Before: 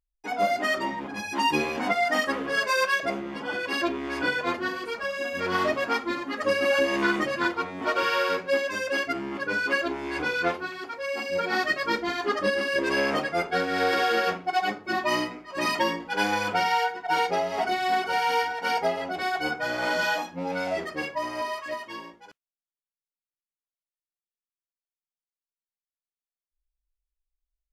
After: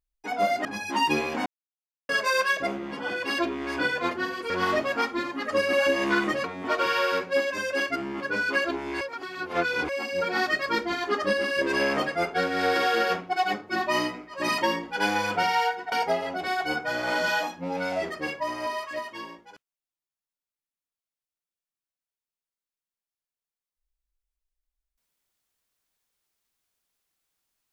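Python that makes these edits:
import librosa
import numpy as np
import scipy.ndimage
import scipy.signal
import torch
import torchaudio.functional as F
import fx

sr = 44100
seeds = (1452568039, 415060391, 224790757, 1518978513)

y = fx.edit(x, sr, fx.cut(start_s=0.65, length_s=0.43),
    fx.silence(start_s=1.89, length_s=0.63),
    fx.cut(start_s=4.93, length_s=0.49),
    fx.cut(start_s=7.36, length_s=0.25),
    fx.reverse_span(start_s=10.18, length_s=0.88),
    fx.cut(start_s=17.09, length_s=1.58), tone=tone)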